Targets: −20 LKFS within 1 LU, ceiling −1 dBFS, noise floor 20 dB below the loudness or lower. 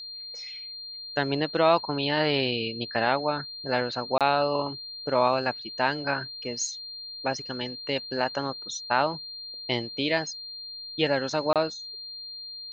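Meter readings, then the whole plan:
number of dropouts 2; longest dropout 27 ms; interfering tone 4,200 Hz; level of the tone −37 dBFS; integrated loudness −28.0 LKFS; sample peak −8.0 dBFS; target loudness −20.0 LKFS
→ repair the gap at 0:04.18/0:11.53, 27 ms
notch filter 4,200 Hz, Q 30
level +8 dB
brickwall limiter −1 dBFS

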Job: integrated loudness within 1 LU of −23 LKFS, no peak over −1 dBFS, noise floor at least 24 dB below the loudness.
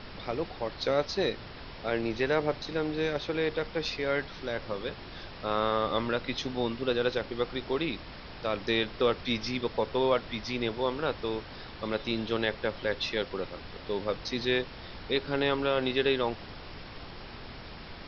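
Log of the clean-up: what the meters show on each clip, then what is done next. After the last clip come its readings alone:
background noise floor −45 dBFS; target noise floor −55 dBFS; integrated loudness −31.0 LKFS; sample peak −12.5 dBFS; target loudness −23.0 LKFS
→ noise reduction from a noise print 10 dB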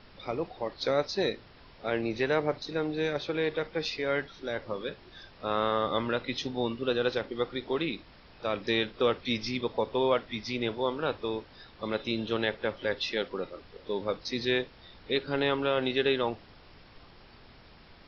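background noise floor −54 dBFS; target noise floor −55 dBFS
→ noise reduction from a noise print 6 dB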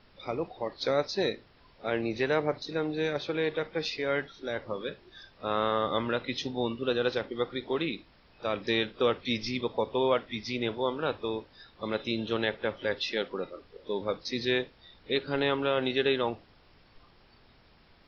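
background noise floor −60 dBFS; integrated loudness −31.0 LKFS; sample peak −12.5 dBFS; target loudness −23.0 LKFS
→ level +8 dB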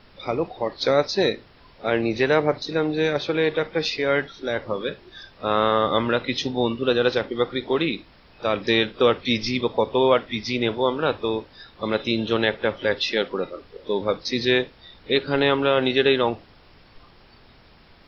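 integrated loudness −23.0 LKFS; sample peak −4.5 dBFS; background noise floor −52 dBFS

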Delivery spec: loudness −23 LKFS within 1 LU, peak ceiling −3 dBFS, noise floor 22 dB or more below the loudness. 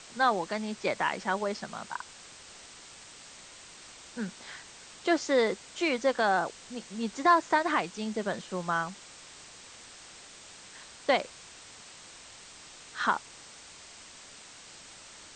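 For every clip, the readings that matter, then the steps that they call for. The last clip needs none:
background noise floor −50 dBFS; target noise floor −52 dBFS; integrated loudness −30.0 LKFS; sample peak −11.5 dBFS; target loudness −23.0 LKFS
→ broadband denoise 6 dB, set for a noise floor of −50 dBFS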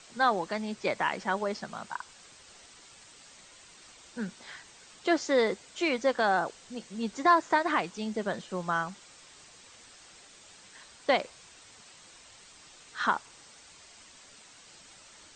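background noise floor −54 dBFS; integrated loudness −30.0 LKFS; sample peak −11.5 dBFS; target loudness −23.0 LKFS
→ level +7 dB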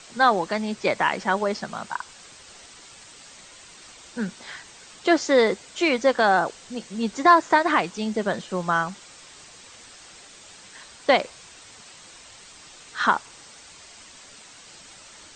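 integrated loudness −23.0 LKFS; sample peak −4.5 dBFS; background noise floor −47 dBFS

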